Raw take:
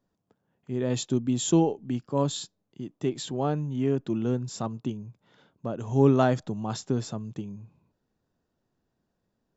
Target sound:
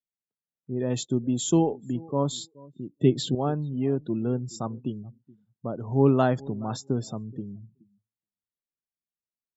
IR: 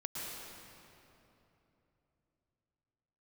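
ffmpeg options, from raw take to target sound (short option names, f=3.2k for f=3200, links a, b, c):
-filter_complex "[0:a]asettb=1/sr,asplit=3[a][b][c];[a]atrim=end=2.924[d];[b]atrim=start=2.92:end=3.35,asetpts=PTS-STARTPTS,afade=t=in:d=0.004:c=qsin,afade=t=out:st=0.426:d=0.004:c=qsin,equalizer=f=125:t=o:w=1:g=10,equalizer=f=250:t=o:w=1:g=6,equalizer=f=500:t=o:w=1:g=7,equalizer=f=1k:t=o:w=1:g=-11,equalizer=f=2k:t=o:w=1:g=4,equalizer=f=4k:t=o:w=1:g=6[e];[c]atrim=start=3.346[f];[d][e]acrossfade=d=0.004:c1=hsin:c2=qsin[g];[g][f]acrossfade=d=0.004:c1=qsin:c2=hsin,asplit=2[h][i];[i]aecho=0:1:424|848:0.0794|0.0167[j];[h][j]amix=inputs=2:normalize=0,afftdn=nr=32:nf=-43"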